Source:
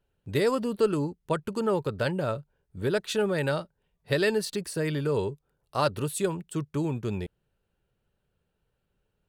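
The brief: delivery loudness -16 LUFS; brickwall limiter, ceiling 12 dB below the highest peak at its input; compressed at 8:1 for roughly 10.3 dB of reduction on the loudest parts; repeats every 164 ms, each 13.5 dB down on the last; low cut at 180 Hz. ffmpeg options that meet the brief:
-af "highpass=180,acompressor=threshold=0.0316:ratio=8,alimiter=level_in=1.5:limit=0.0631:level=0:latency=1,volume=0.668,aecho=1:1:164|328:0.211|0.0444,volume=12.6"

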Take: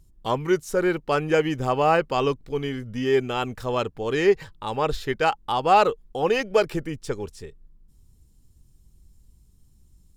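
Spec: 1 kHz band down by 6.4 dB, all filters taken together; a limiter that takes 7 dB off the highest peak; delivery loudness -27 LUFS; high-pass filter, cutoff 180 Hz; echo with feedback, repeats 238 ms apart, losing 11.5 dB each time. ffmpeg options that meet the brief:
-af "highpass=180,equalizer=f=1000:t=o:g=-9,alimiter=limit=0.141:level=0:latency=1,aecho=1:1:238|476|714:0.266|0.0718|0.0194,volume=1.19"

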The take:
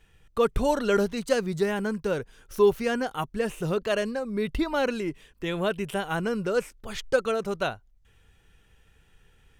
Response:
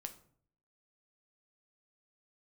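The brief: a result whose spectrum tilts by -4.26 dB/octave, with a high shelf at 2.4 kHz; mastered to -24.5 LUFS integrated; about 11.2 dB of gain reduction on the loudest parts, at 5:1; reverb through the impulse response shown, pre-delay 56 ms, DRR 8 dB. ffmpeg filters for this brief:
-filter_complex "[0:a]highshelf=f=2400:g=7.5,acompressor=threshold=0.0398:ratio=5,asplit=2[s0][s1];[1:a]atrim=start_sample=2205,adelay=56[s2];[s1][s2]afir=irnorm=-1:irlink=0,volume=0.596[s3];[s0][s3]amix=inputs=2:normalize=0,volume=2.37"

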